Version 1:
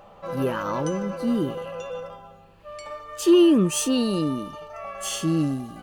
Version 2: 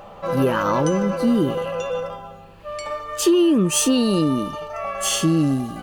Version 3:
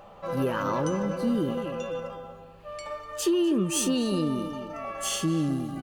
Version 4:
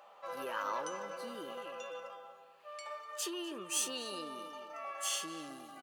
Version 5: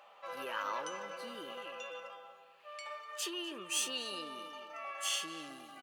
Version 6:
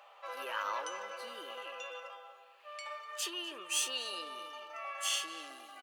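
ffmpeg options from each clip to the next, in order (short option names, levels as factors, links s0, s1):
-af "acompressor=threshold=0.0794:ratio=6,volume=2.51"
-filter_complex "[0:a]asplit=2[s0][s1];[s1]adelay=248,lowpass=f=1900:p=1,volume=0.316,asplit=2[s2][s3];[s3]adelay=248,lowpass=f=1900:p=1,volume=0.36,asplit=2[s4][s5];[s5]adelay=248,lowpass=f=1900:p=1,volume=0.36,asplit=2[s6][s7];[s7]adelay=248,lowpass=f=1900:p=1,volume=0.36[s8];[s0][s2][s4][s6][s8]amix=inputs=5:normalize=0,volume=0.398"
-af "highpass=730,volume=0.531"
-af "equalizer=f=2600:w=0.95:g=7,volume=0.75"
-af "highpass=470,volume=1.19"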